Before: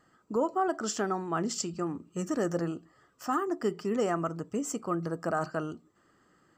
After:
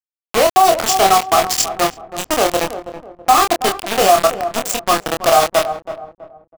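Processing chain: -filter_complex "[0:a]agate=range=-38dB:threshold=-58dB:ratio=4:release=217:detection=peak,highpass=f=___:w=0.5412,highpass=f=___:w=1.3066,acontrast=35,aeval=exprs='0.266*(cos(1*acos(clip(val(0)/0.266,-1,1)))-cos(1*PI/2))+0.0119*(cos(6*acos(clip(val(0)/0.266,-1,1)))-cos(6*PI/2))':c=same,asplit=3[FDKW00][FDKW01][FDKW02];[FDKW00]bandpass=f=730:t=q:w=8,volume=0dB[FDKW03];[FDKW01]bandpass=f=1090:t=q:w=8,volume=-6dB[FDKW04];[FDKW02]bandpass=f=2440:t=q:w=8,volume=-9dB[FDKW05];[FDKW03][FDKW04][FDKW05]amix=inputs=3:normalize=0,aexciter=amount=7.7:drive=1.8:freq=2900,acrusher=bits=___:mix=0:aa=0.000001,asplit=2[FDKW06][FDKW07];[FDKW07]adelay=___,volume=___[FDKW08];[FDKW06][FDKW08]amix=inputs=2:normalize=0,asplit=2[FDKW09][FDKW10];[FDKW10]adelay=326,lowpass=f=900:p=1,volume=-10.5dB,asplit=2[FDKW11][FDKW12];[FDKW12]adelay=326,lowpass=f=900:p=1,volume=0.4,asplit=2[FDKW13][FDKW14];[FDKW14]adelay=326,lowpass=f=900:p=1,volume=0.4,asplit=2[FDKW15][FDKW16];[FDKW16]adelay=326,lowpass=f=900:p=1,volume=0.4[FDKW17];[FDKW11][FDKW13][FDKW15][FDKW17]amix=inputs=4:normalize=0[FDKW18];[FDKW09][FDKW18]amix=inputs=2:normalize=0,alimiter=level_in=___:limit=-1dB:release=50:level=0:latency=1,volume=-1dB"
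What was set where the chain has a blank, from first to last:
150, 150, 5, 26, -4dB, 21.5dB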